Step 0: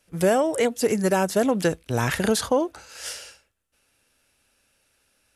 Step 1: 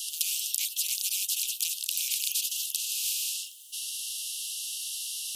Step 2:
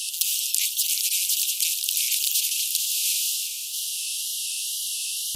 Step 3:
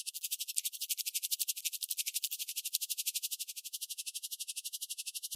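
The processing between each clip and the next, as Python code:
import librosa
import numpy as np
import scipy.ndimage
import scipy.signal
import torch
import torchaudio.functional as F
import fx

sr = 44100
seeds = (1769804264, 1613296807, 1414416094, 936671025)

y1 = scipy.signal.sosfilt(scipy.signal.cheby1(10, 1.0, 2800.0, 'highpass', fs=sr, output='sos'), x)
y1 = fx.spectral_comp(y1, sr, ratio=10.0)
y1 = F.gain(torch.from_numpy(y1), 5.5).numpy()
y2 = fx.echo_feedback(y1, sr, ms=355, feedback_pct=55, wet_db=-8)
y2 = fx.wow_flutter(y2, sr, seeds[0], rate_hz=2.1, depth_cents=79.0)
y2 = F.gain(torch.from_numpy(y2), 5.5).numpy()
y3 = y2 * 10.0 ** (-31 * (0.5 - 0.5 * np.cos(2.0 * np.pi * 12.0 * np.arange(len(y2)) / sr)) / 20.0)
y3 = F.gain(torch.from_numpy(y3), -7.0).numpy()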